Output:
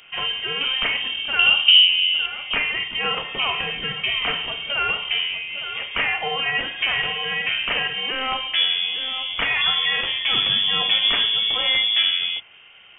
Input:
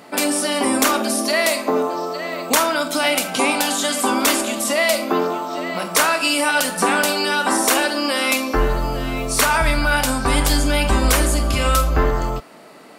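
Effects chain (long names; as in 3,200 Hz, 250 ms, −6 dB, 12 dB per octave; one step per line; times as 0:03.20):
0:01.39–0:02.26: low shelf with overshoot 790 Hz +10 dB, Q 1.5
voice inversion scrambler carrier 3,400 Hz
hum removal 84.37 Hz, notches 23
level −4.5 dB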